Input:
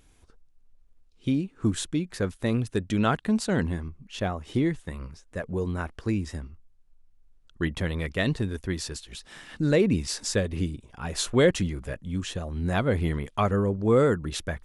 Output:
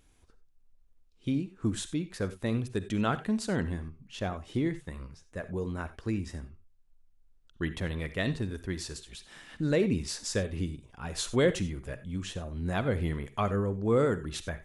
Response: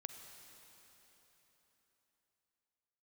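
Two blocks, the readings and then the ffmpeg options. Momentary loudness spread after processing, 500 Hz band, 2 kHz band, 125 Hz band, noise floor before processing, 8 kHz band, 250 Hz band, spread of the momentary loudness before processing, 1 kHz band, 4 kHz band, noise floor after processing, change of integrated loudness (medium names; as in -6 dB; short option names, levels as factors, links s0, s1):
14 LU, -4.5 dB, -4.5 dB, -4.5 dB, -59 dBFS, -4.5 dB, -4.5 dB, 15 LU, -4.5 dB, -4.5 dB, -62 dBFS, -4.5 dB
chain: -filter_complex "[1:a]atrim=start_sample=2205,atrim=end_sample=4410[s0];[0:a][s0]afir=irnorm=-1:irlink=0"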